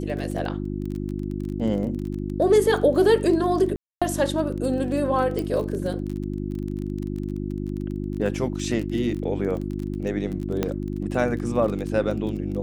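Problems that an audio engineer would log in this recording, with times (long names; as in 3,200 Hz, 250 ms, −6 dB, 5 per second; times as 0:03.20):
surface crackle 22 per second −30 dBFS
mains hum 50 Hz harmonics 7 −29 dBFS
0:03.76–0:04.02: drop-out 256 ms
0:05.39: click
0:10.63: click −10 dBFS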